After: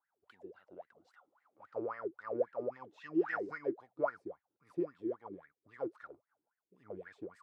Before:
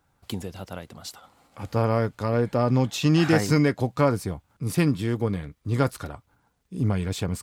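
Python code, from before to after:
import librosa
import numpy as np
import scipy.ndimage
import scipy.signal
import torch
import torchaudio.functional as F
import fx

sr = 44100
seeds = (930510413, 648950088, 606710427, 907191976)

y = fx.wah_lfo(x, sr, hz=3.7, low_hz=320.0, high_hz=1900.0, q=16.0)
y = fx.am_noise(y, sr, seeds[0], hz=5.7, depth_pct=50)
y = y * 10.0 ** (2.5 / 20.0)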